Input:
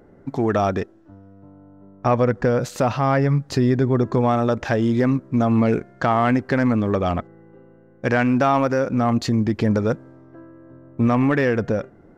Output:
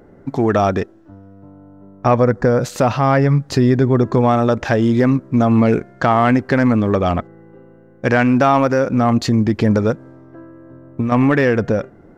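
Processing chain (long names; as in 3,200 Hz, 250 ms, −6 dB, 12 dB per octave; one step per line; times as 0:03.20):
0:02.19–0:02.61: parametric band 2,900 Hz −12 dB 0.5 octaves
0:09.90–0:11.12: downward compressor 6 to 1, threshold −21 dBFS, peak gain reduction 7.5 dB
level +4.5 dB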